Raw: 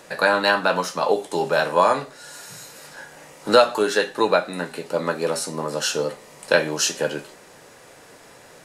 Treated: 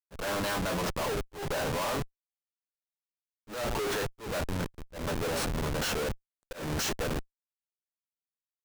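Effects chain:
comparator with hysteresis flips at −26.5 dBFS
volume swells 187 ms
level −7.5 dB

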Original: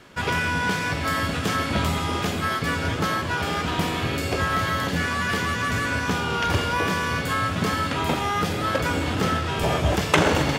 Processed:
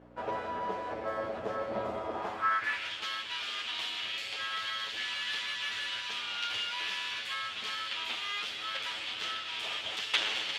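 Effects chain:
lower of the sound and its delayed copy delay 9.2 ms
mains hum 60 Hz, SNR 11 dB
band-pass filter sweep 600 Hz → 3,200 Hz, 0:02.12–0:02.91

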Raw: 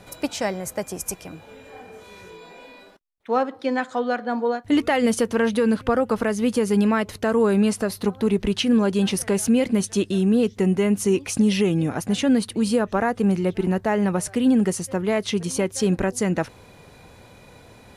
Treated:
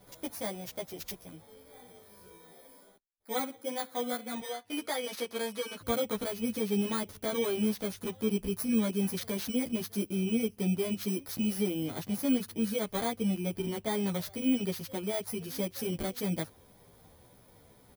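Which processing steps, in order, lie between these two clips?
samples in bit-reversed order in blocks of 16 samples
0:04.40–0:05.81: meter weighting curve A
barber-pole flanger 11.6 ms −1.8 Hz
level −8 dB

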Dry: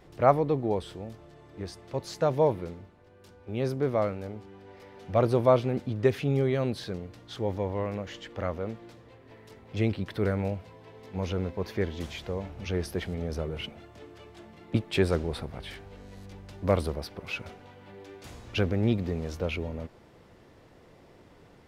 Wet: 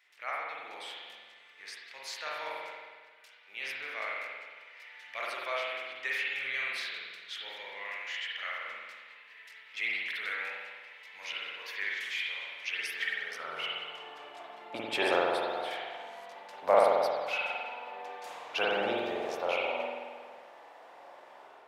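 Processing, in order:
automatic gain control gain up to 6 dB
spring reverb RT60 1.5 s, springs 45 ms, chirp 50 ms, DRR −5 dB
high-pass filter sweep 2,100 Hz → 760 Hz, 0:12.92–0:14.26
level −7.5 dB

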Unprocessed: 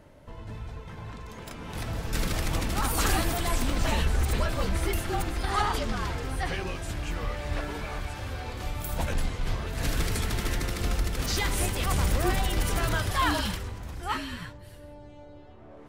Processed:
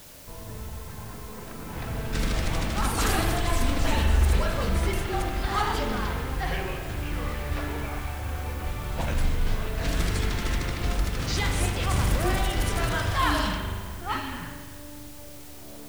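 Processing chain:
low-pass that shuts in the quiet parts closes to 1,300 Hz, open at −21 dBFS
spring reverb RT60 1.5 s, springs 41 ms, chirp 20 ms, DRR 3.5 dB
bit-depth reduction 8 bits, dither triangular

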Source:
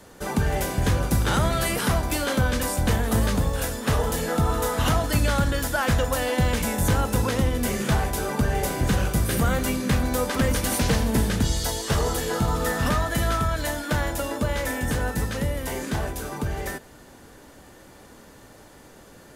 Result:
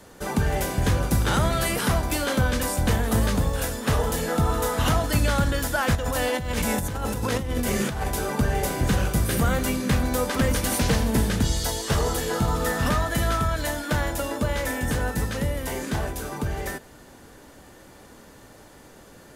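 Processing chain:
0:05.95–0:08.08: compressor whose output falls as the input rises −26 dBFS, ratio −1

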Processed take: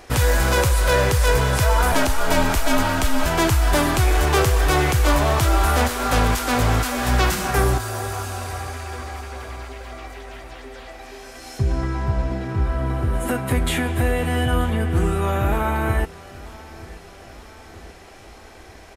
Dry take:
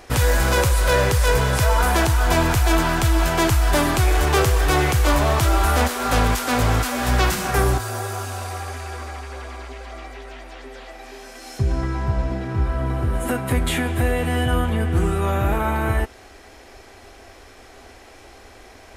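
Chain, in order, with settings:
0:01.92–0:03.26: frequency shifter −63 Hz
repeating echo 931 ms, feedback 57%, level −20.5 dB

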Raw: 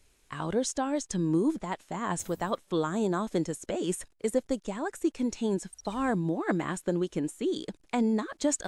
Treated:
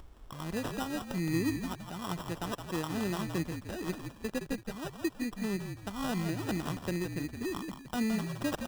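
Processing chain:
adaptive Wiener filter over 9 samples
harmonic generator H 7 −30 dB, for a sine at −14.5 dBFS
upward compression, threshold −38 dBFS
graphic EQ with 10 bands 125 Hz −3 dB, 250 Hz −4 dB, 500 Hz −11 dB, 1,000 Hz −5 dB, 2,000 Hz −10 dB, 4,000 Hz +8 dB, 8,000 Hz −11 dB
sample-rate reduction 2,200 Hz, jitter 0%
echo with shifted repeats 167 ms, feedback 34%, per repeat −53 Hz, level −7 dB
level +2.5 dB

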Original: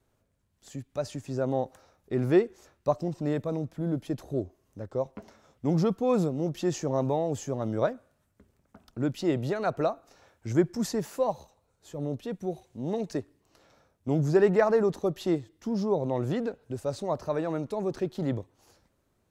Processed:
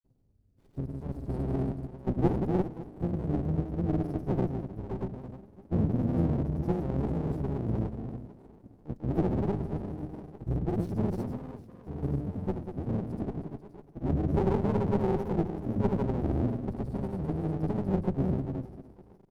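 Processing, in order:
Chebyshev band-stop filter 410–8,800 Hz, order 5
high-shelf EQ 3,500 Hz −8.5 dB
hum removal 294.9 Hz, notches 6
in parallel at −0.5 dB: downward compressor 16 to 1, threshold −37 dBFS, peak gain reduction 20.5 dB
on the sum: echo with a time of its own for lows and highs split 390 Hz, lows 129 ms, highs 254 ms, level −5 dB
pitch-shifted copies added −12 semitones −2 dB, −4 semitones −18 dB, +5 semitones −7 dB
granular cloud, pitch spread up and down by 0 semitones
windowed peak hold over 33 samples
level −2 dB

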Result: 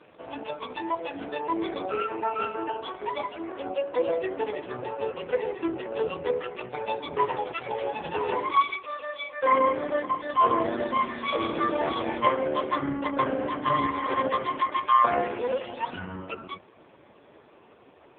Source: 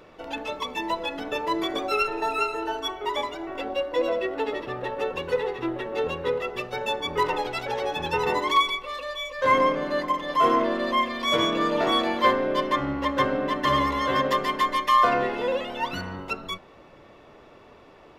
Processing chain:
AMR narrowband 4.75 kbit/s 8,000 Hz

